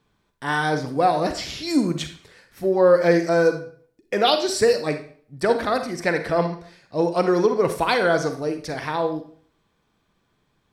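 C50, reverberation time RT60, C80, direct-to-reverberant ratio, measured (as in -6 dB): 9.0 dB, 0.50 s, 13.5 dB, 7.5 dB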